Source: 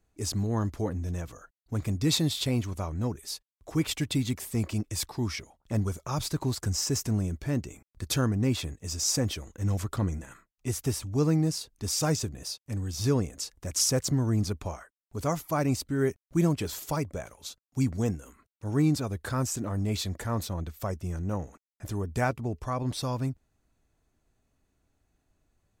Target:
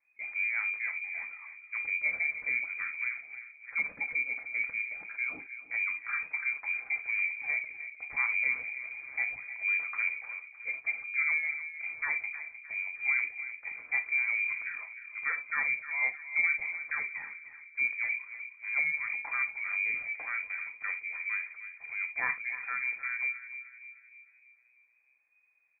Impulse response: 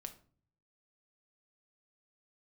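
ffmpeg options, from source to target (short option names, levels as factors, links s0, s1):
-filter_complex "[0:a]asplit=2[s0][s1];[s1]adelay=307,lowpass=f=1100:p=1,volume=0.282,asplit=2[s2][s3];[s3]adelay=307,lowpass=f=1100:p=1,volume=0.52,asplit=2[s4][s5];[s5]adelay=307,lowpass=f=1100:p=1,volume=0.52,asplit=2[s6][s7];[s7]adelay=307,lowpass=f=1100:p=1,volume=0.52,asplit=2[s8][s9];[s9]adelay=307,lowpass=f=1100:p=1,volume=0.52,asplit=2[s10][s11];[s11]adelay=307,lowpass=f=1100:p=1,volume=0.52[s12];[s0][s2][s4][s6][s8][s10][s12]amix=inputs=7:normalize=0[s13];[1:a]atrim=start_sample=2205,atrim=end_sample=3528[s14];[s13][s14]afir=irnorm=-1:irlink=0,lowpass=f=2100:t=q:w=0.5098,lowpass=f=2100:t=q:w=0.6013,lowpass=f=2100:t=q:w=0.9,lowpass=f=2100:t=q:w=2.563,afreqshift=-2500"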